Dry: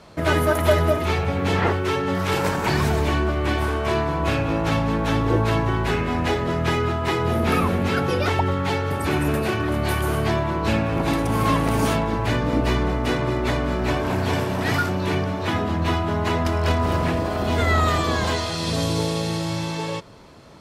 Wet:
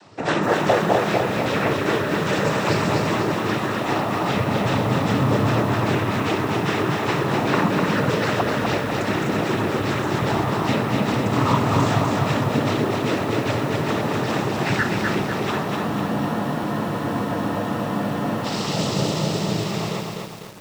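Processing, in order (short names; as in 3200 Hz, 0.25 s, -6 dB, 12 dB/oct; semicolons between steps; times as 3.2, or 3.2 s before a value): noise vocoder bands 12; spectral freeze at 15.66, 2.78 s; lo-fi delay 0.25 s, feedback 55%, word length 7-bit, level -3 dB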